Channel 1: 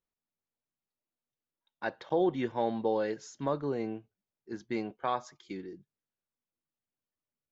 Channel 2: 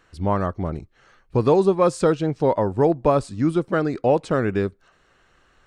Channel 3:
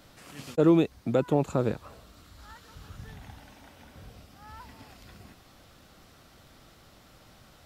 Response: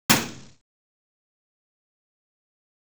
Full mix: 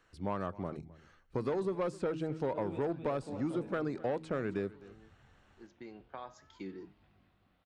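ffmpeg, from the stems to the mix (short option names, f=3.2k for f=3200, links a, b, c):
-filter_complex "[0:a]acompressor=threshold=-34dB:ratio=4,flanger=delay=8.7:depth=2.8:regen=87:speed=0.31:shape=sinusoidal,adelay=1100,volume=2dB[a];[1:a]bandreject=f=79.71:t=h:w=4,bandreject=f=159.42:t=h:w=4,bandreject=f=239.13:t=h:w=4,bandreject=f=318.84:t=h:w=4,asoftclip=type=tanh:threshold=-13.5dB,volume=-9.5dB,asplit=3[b][c][d];[c]volume=-21.5dB[e];[2:a]flanger=delay=20:depth=4.6:speed=0.4,lowpass=f=3.5k:w=0.5412,lowpass=f=3.5k:w=1.3066,adelay=1950,volume=-16.5dB,asplit=2[f][g];[g]volume=-5dB[h];[d]apad=whole_len=380089[i];[a][i]sidechaincompress=threshold=-49dB:ratio=12:attack=16:release=1490[j];[e][h]amix=inputs=2:normalize=0,aecho=0:1:260:1[k];[j][b][f][k]amix=inputs=4:normalize=0,acrossover=split=120|3000[l][m][n];[l]acompressor=threshold=-56dB:ratio=4[o];[m]acompressor=threshold=-30dB:ratio=4[p];[n]acompressor=threshold=-60dB:ratio=4[q];[o][p][q]amix=inputs=3:normalize=0"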